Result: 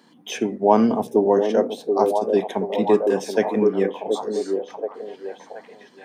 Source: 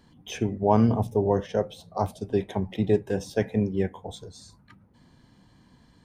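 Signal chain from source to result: HPF 220 Hz 24 dB/oct; delay with a stepping band-pass 0.728 s, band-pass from 380 Hz, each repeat 0.7 oct, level -2 dB; gain +6 dB

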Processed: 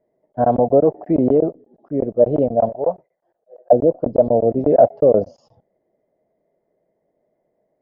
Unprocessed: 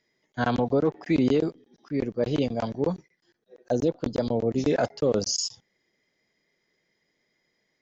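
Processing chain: synth low-pass 640 Hz, resonance Q 4.9; 2.69–3.73 resonant low shelf 440 Hz -11 dB, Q 1.5; gain +3.5 dB

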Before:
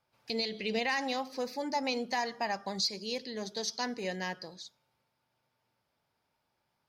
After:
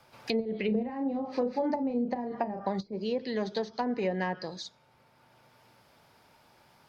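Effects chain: 0.65–2.68 doubler 33 ms -4 dB; treble ducked by the level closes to 330 Hz, closed at -28 dBFS; three-band squash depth 40%; gain +7 dB

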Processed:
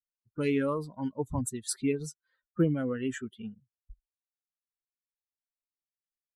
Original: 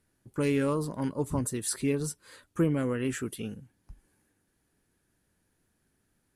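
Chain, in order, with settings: per-bin expansion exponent 2; low-pass opened by the level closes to 980 Hz, open at -29 dBFS; gain +2 dB

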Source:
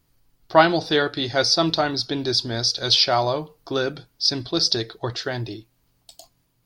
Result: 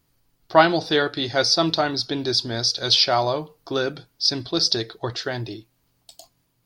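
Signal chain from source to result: low shelf 67 Hz -6 dB

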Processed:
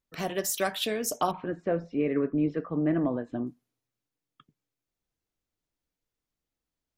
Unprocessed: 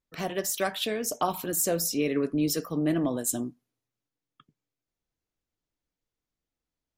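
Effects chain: 1.31–3.47 LPF 2100 Hz 24 dB/oct

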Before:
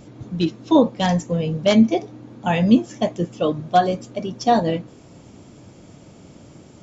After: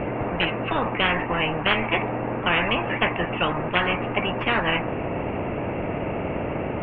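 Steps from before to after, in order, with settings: rippled Chebyshev low-pass 2800 Hz, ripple 3 dB; spectral compressor 10:1

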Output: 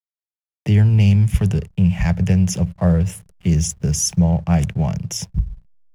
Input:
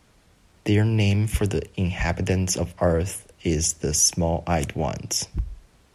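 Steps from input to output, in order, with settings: backlash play -38.5 dBFS; resonant low shelf 220 Hz +7.5 dB, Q 3; gain -1.5 dB

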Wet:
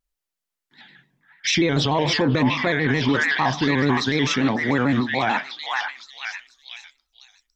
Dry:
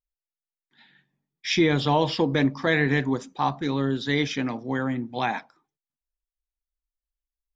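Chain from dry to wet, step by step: delay with a stepping band-pass 0.499 s, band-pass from 1400 Hz, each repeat 0.7 oct, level -2.5 dB; limiter -19 dBFS, peak gain reduction 10 dB; shaped vibrato square 6.8 Hz, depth 100 cents; gain +8.5 dB

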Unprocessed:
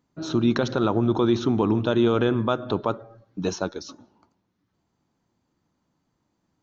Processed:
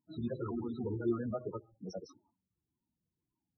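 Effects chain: plain phase-vocoder stretch 0.54×; loudest bins only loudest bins 16; cascading flanger falling 1.8 Hz; gain -5.5 dB

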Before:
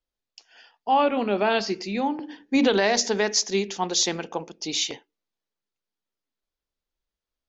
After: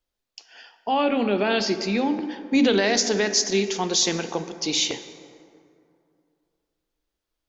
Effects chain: dynamic EQ 900 Hz, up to -7 dB, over -36 dBFS, Q 1.2; in parallel at +1 dB: limiter -21 dBFS, peak gain reduction 11 dB; on the sum: plate-style reverb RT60 2.6 s, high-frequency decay 0.45×, DRR 10 dB; gain -1.5 dB

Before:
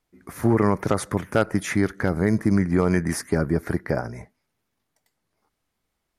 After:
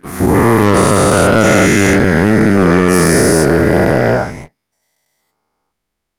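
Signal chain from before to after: spectral dilation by 0.48 s; sample leveller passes 2

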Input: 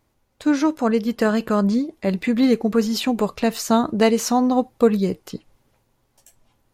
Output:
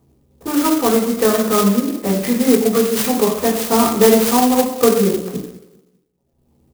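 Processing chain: low-pass opened by the level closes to 320 Hz, open at -17.5 dBFS; gate -47 dBFS, range -41 dB; low shelf 170 Hz -7 dB; upward compressor, threshold -20 dBFS; feedback echo 0.197 s, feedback 34%, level -19 dB; reverb RT60 0.70 s, pre-delay 3 ms, DRR -8 dB; clock jitter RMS 0.092 ms; gain -8.5 dB

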